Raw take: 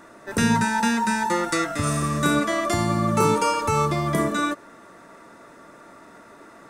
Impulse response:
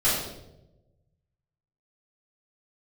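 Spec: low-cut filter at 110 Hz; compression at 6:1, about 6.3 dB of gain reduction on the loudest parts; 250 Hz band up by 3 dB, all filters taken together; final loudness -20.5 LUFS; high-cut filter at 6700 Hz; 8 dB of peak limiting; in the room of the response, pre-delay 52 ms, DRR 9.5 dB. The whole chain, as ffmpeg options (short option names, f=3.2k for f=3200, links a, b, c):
-filter_complex "[0:a]highpass=110,lowpass=6.7k,equalizer=f=250:t=o:g=4,acompressor=threshold=-20dB:ratio=6,alimiter=limit=-19.5dB:level=0:latency=1,asplit=2[a][b];[1:a]atrim=start_sample=2205,adelay=52[c];[b][c]afir=irnorm=-1:irlink=0,volume=-23.5dB[d];[a][d]amix=inputs=2:normalize=0,volume=6.5dB"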